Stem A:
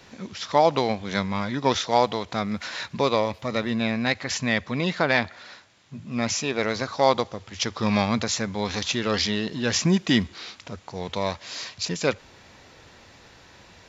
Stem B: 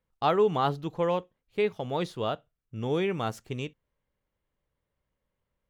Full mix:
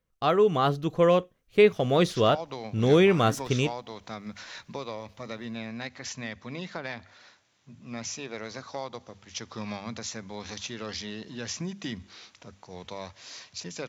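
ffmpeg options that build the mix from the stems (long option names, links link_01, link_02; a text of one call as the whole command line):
ffmpeg -i stem1.wav -i stem2.wav -filter_complex "[0:a]acrossover=split=120[link_01][link_02];[link_02]acompressor=threshold=-23dB:ratio=3[link_03];[link_01][link_03]amix=inputs=2:normalize=0,bandreject=frequency=50:width_type=h:width=6,bandreject=frequency=100:width_type=h:width=6,bandreject=frequency=150:width_type=h:width=6,bandreject=frequency=200:width_type=h:width=6,bandreject=frequency=250:width_type=h:width=6,adelay=1750,volume=-17dB[link_04];[1:a]bandreject=frequency=880:width=5.1,volume=1.5dB[link_05];[link_04][link_05]amix=inputs=2:normalize=0,equalizer=frequency=6000:width_type=o:width=0.21:gain=5,dynaudnorm=framelen=260:gausssize=7:maxgain=7dB" out.wav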